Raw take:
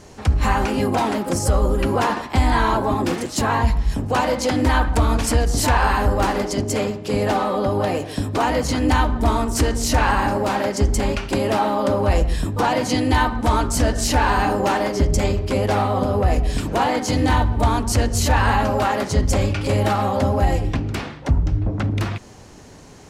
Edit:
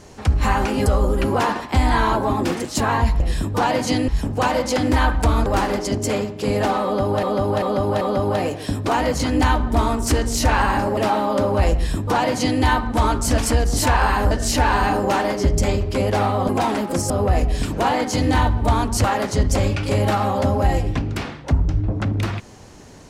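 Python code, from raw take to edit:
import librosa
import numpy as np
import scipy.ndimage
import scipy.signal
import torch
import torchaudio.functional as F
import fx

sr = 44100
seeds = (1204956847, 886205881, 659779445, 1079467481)

y = fx.edit(x, sr, fx.move(start_s=0.86, length_s=0.61, to_s=16.05),
    fx.move(start_s=5.19, length_s=0.93, to_s=13.87),
    fx.repeat(start_s=7.5, length_s=0.39, count=4),
    fx.cut(start_s=10.46, length_s=1.0),
    fx.duplicate(start_s=12.22, length_s=0.88, to_s=3.81),
    fx.cut(start_s=17.99, length_s=0.83), tone=tone)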